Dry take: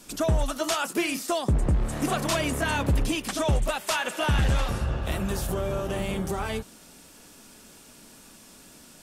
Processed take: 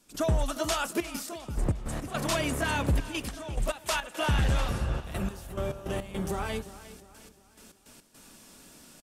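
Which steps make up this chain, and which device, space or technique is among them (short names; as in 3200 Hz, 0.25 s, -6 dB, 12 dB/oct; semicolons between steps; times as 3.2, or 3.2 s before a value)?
trance gate with a delay (step gate ".xxxxxx.x..x.x" 105 bpm -12 dB; feedback echo 0.355 s, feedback 43%, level -16 dB); gain -2.5 dB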